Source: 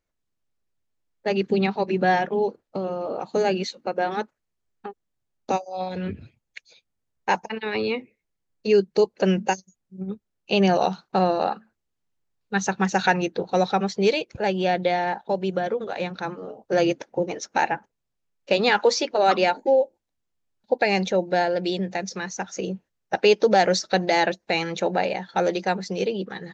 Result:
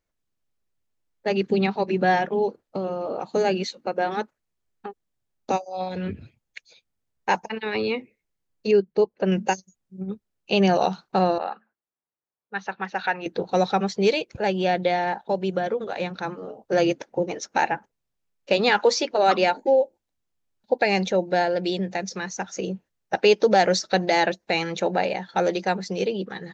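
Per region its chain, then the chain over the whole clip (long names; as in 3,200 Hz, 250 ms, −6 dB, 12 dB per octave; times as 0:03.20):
0:08.71–0:09.32: low-pass filter 5,100 Hz + high-shelf EQ 3,200 Hz −10.5 dB + expander for the loud parts, over −26 dBFS
0:11.38–0:13.26: high-pass filter 1,000 Hz 6 dB per octave + low-pass that shuts in the quiet parts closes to 1,300 Hz, open at −21 dBFS + high-frequency loss of the air 280 metres
whole clip: no processing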